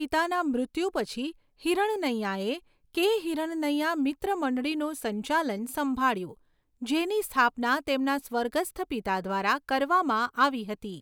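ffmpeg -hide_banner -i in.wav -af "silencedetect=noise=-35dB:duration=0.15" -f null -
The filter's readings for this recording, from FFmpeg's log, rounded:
silence_start: 1.30
silence_end: 1.65 | silence_duration: 0.35
silence_start: 2.57
silence_end: 2.95 | silence_duration: 0.37
silence_start: 6.31
silence_end: 6.82 | silence_duration: 0.51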